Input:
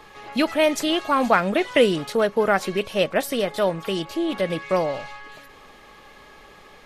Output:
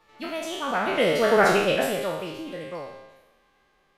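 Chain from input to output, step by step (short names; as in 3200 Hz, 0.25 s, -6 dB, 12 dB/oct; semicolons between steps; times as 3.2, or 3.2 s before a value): spectral trails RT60 1.94 s; Doppler pass-by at 2.53, 16 m/s, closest 6.2 m; time stretch by phase-locked vocoder 0.58×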